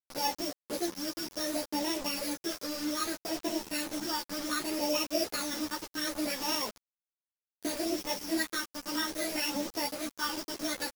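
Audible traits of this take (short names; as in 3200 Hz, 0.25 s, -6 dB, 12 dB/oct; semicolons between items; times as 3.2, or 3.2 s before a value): a buzz of ramps at a fixed pitch in blocks of 8 samples; phasing stages 12, 0.65 Hz, lowest notch 700–1400 Hz; a quantiser's noise floor 6-bit, dither none; a shimmering, thickened sound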